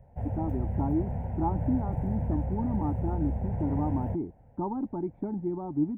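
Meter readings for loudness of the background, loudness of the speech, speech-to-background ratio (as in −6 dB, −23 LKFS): −33.0 LKFS, −33.0 LKFS, 0.0 dB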